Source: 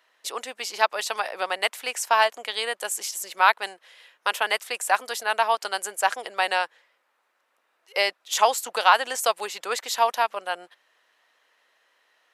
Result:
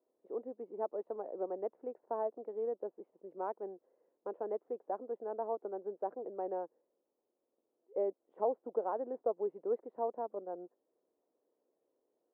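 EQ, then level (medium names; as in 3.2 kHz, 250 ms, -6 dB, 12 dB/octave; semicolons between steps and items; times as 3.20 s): four-pole ladder low-pass 480 Hz, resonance 35%; distance through air 160 m; +6.0 dB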